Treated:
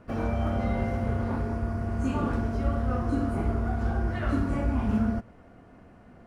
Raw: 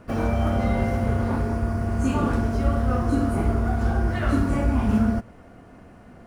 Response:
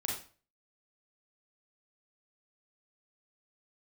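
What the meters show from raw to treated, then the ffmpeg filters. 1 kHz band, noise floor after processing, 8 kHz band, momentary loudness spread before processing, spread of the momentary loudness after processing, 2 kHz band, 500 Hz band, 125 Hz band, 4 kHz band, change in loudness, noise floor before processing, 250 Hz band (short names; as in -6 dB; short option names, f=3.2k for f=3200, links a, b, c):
-5.0 dB, -53 dBFS, under -10 dB, 3 LU, 3 LU, -5.5 dB, -5.0 dB, -5.0 dB, -7.0 dB, -5.0 dB, -48 dBFS, -5.0 dB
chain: -af "highshelf=f=6.7k:g=-9.5,volume=-5dB"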